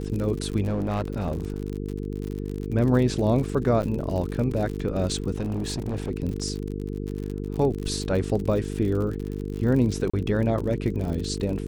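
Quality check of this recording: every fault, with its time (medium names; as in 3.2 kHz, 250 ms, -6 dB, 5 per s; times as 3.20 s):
buzz 50 Hz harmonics 9 -31 dBFS
crackle 59 per s -30 dBFS
0.62–1.60 s: clipped -22 dBFS
3.82–3.83 s: dropout 8.1 ms
5.36–6.10 s: clipped -24 dBFS
10.10–10.13 s: dropout 35 ms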